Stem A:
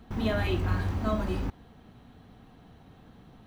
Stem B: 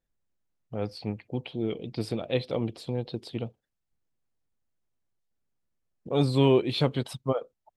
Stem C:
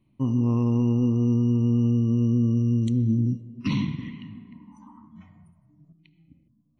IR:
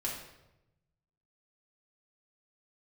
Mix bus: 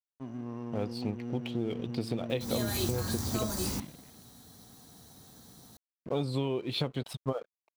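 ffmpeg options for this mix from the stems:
-filter_complex "[0:a]highpass=74,aexciter=amount=7.6:drive=9.4:freq=4.3k,adelay=2300,volume=-3dB[a];[1:a]volume=1dB,asplit=2[b][c];[2:a]highpass=180,volume=-12dB[d];[c]apad=whole_len=254456[e];[a][e]sidechaincompress=threshold=-26dB:ratio=8:attack=5.7:release=401[f];[b][d]amix=inputs=2:normalize=0,aeval=exprs='sgn(val(0))*max(abs(val(0))-0.00422,0)':c=same,acompressor=threshold=-27dB:ratio=12,volume=0dB[g];[f][g]amix=inputs=2:normalize=0"

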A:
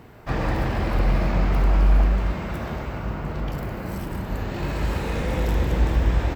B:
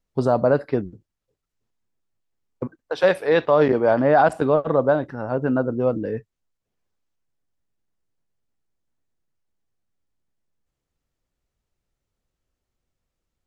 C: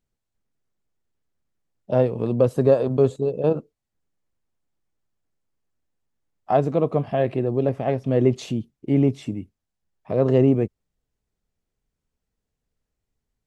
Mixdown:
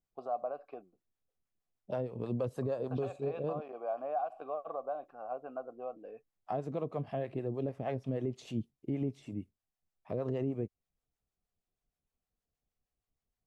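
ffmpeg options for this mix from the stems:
-filter_complex "[1:a]highpass=150,acompressor=threshold=-19dB:ratio=6,asplit=3[a][b][c];[a]bandpass=f=730:t=q:w=8,volume=0dB[d];[b]bandpass=f=1.09k:t=q:w=8,volume=-6dB[e];[c]bandpass=f=2.44k:t=q:w=8,volume=-9dB[f];[d][e][f]amix=inputs=3:normalize=0,volume=-4.5dB[g];[2:a]acrossover=split=580[h][i];[h]aeval=exprs='val(0)*(1-0.7/2+0.7/2*cos(2*PI*6.4*n/s))':c=same[j];[i]aeval=exprs='val(0)*(1-0.7/2-0.7/2*cos(2*PI*6.4*n/s))':c=same[k];[j][k]amix=inputs=2:normalize=0,volume=-6.5dB[l];[g][l]amix=inputs=2:normalize=0,alimiter=level_in=1dB:limit=-24dB:level=0:latency=1:release=273,volume=-1dB"

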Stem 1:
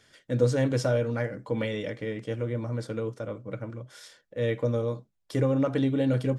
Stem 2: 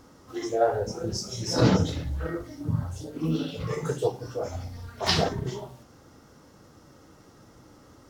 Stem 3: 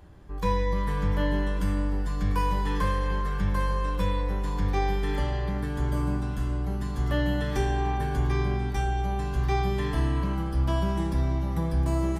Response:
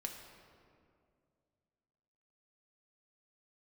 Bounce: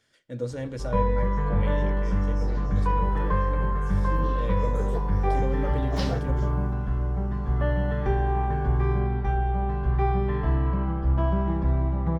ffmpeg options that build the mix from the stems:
-filter_complex "[0:a]volume=-10.5dB,asplit=2[a][b];[b]volume=-7dB[c];[1:a]equalizer=f=4.3k:w=0.64:g=-4.5,adelay=900,volume=-8dB,afade=t=in:st=2.66:d=0.4:silence=0.251189[d];[2:a]lowpass=1.5k,equalizer=f=290:w=7.5:g=-10,adelay=500,volume=2.5dB[e];[3:a]atrim=start_sample=2205[f];[c][f]afir=irnorm=-1:irlink=0[g];[a][d][e][g]amix=inputs=4:normalize=0"

